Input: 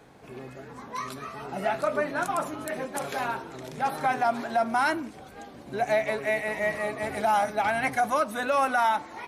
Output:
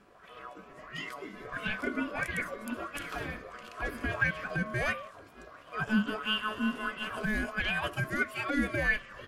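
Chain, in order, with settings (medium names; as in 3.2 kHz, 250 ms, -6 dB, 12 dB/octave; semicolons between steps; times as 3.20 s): ring modulator 860 Hz; sweeping bell 1.5 Hz 210–3000 Hz +12 dB; trim -6.5 dB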